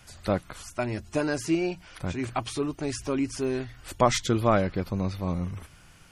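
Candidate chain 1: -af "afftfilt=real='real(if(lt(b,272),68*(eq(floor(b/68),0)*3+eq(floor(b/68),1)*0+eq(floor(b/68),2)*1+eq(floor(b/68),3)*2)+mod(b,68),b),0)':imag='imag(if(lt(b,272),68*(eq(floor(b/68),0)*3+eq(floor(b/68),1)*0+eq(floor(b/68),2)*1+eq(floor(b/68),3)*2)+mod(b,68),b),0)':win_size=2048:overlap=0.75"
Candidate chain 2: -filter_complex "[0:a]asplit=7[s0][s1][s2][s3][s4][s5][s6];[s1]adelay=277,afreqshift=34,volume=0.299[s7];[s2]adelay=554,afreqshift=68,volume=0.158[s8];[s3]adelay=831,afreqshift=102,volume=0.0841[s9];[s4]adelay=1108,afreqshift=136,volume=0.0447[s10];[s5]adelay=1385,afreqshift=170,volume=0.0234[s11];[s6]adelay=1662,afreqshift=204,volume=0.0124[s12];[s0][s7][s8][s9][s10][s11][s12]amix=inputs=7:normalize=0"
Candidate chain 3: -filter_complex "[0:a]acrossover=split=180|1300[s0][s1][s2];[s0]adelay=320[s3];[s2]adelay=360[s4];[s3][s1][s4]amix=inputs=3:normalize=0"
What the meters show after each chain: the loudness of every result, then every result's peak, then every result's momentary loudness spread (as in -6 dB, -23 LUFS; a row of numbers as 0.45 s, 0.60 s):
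-26.0 LUFS, -28.0 LUFS, -30.0 LUFS; -7.0 dBFS, -8.0 dBFS, -9.0 dBFS; 10 LU, 10 LU, 10 LU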